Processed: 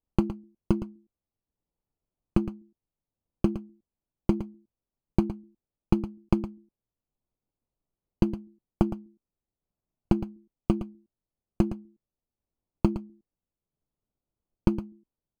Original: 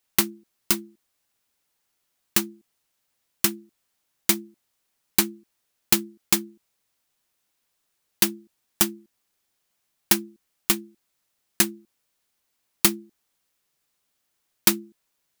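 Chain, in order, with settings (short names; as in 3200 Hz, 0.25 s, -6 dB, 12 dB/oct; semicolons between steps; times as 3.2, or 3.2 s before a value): gate -47 dBFS, range -9 dB; tilt -3.5 dB/oct; compressor 4:1, threshold -22 dBFS, peak gain reduction 8.5 dB; transient shaper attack +5 dB, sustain -3 dB; running mean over 24 samples; echo 0.113 s -12 dB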